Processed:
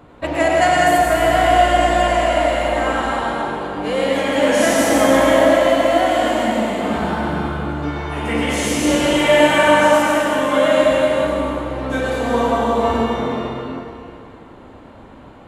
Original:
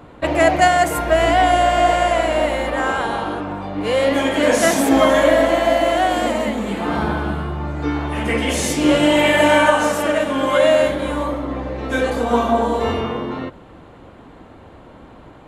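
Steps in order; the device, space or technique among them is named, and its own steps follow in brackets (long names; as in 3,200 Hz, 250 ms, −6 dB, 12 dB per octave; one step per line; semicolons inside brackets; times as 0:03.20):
stairwell (convolution reverb RT60 2.6 s, pre-delay 87 ms, DRR −2.5 dB)
level −3.5 dB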